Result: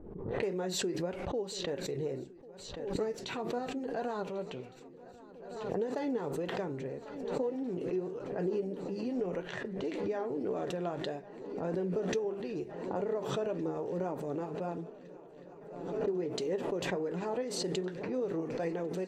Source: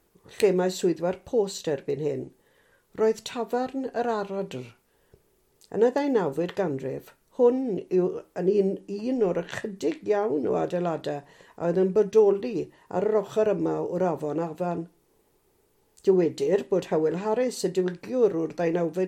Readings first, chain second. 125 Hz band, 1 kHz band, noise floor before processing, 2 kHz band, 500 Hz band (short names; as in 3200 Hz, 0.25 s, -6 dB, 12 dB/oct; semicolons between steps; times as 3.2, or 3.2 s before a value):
-7.0 dB, -8.5 dB, -67 dBFS, -5.5 dB, -10.5 dB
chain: high shelf 6600 Hz -4.5 dB; flange 1.7 Hz, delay 3.1 ms, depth 5.8 ms, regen +61%; compressor 6:1, threshold -27 dBFS, peak gain reduction 10 dB; low-pass opened by the level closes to 420 Hz, open at -30.5 dBFS; on a send: swung echo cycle 1.461 s, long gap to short 3:1, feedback 75%, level -20 dB; on the sum: backwards sustainer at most 46 dB/s; gain -3.5 dB